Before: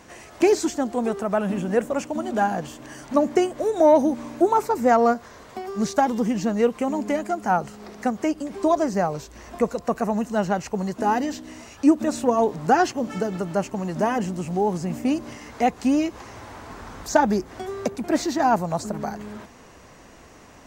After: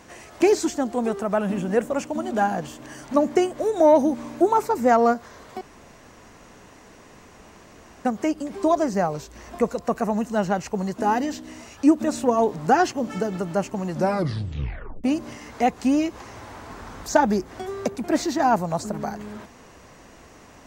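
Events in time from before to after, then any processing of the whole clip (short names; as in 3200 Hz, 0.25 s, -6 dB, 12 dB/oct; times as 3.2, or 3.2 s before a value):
5.61–8.05 room tone
13.92 tape stop 1.12 s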